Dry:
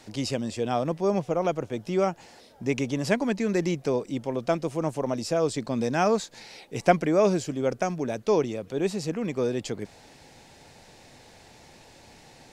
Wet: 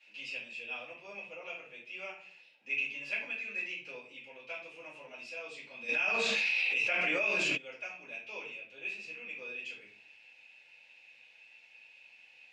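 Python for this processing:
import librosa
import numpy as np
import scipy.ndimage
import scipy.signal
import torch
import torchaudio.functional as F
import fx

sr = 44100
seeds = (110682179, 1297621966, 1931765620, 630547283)

y = fx.bandpass_q(x, sr, hz=2600.0, q=13.0)
y = fx.room_shoebox(y, sr, seeds[0], volume_m3=41.0, walls='mixed', distance_m=2.4)
y = fx.env_flatten(y, sr, amount_pct=100, at=(5.88, 7.56), fade=0.02)
y = y * 10.0 ** (-2.0 / 20.0)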